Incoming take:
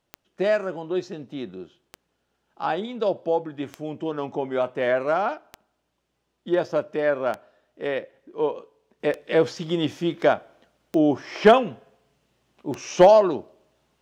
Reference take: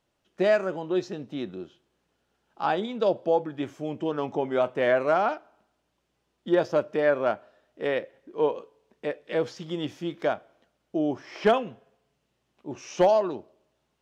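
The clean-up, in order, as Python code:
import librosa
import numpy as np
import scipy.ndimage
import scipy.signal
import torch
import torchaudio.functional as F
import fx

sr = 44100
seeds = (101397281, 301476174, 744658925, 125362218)

y = fx.fix_declick_ar(x, sr, threshold=10.0)
y = fx.fix_level(y, sr, at_s=9.0, step_db=-7.0)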